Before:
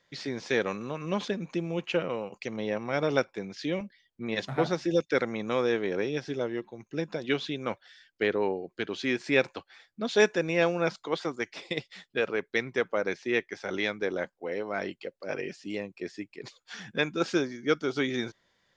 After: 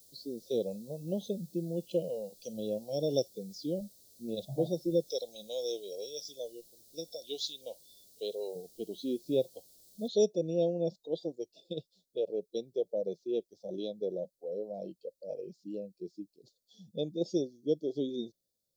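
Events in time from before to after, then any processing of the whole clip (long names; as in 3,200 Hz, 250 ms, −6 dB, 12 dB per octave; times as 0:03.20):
0:01.91–0:03.58: high-shelf EQ 2,500 Hz +9 dB
0:05.05–0:08.56: spectral tilt +4.5 dB per octave
0:10.08: noise floor change −43 dB −68 dB
whole clip: elliptic band-stop filter 590–4,100 Hz, stop band 50 dB; noise reduction from a noise print of the clip's start 14 dB; level −2.5 dB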